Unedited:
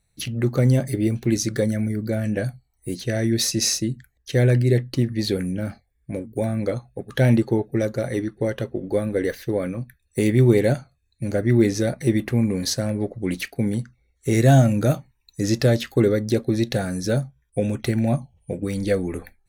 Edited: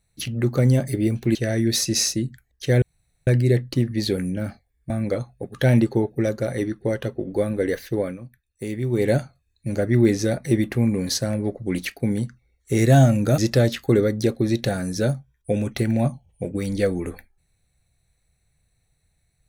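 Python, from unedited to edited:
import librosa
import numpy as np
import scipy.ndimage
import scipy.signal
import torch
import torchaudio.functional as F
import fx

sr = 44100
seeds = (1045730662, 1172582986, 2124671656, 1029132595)

y = fx.edit(x, sr, fx.cut(start_s=1.35, length_s=1.66),
    fx.insert_room_tone(at_s=4.48, length_s=0.45),
    fx.cut(start_s=6.11, length_s=0.35),
    fx.fade_down_up(start_s=9.56, length_s=1.1, db=-9.5, fade_s=0.19),
    fx.cut(start_s=14.94, length_s=0.52), tone=tone)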